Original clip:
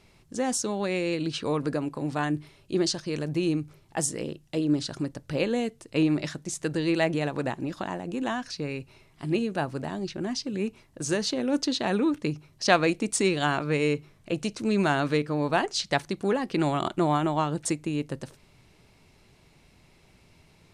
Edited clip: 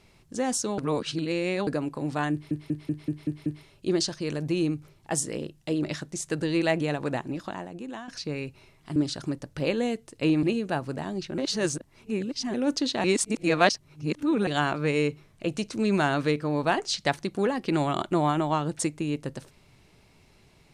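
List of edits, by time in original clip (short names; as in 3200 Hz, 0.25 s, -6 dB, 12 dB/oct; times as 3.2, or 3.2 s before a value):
0.78–1.67 reverse
2.32 stutter 0.19 s, 7 plays
4.69–6.16 move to 9.29
7.53–8.41 fade out, to -12 dB
10.24–11.4 reverse
11.9–13.33 reverse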